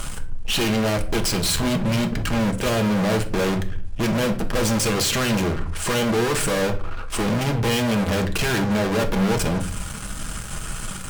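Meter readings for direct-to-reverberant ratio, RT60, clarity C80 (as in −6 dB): 4.0 dB, 0.45 s, 17.5 dB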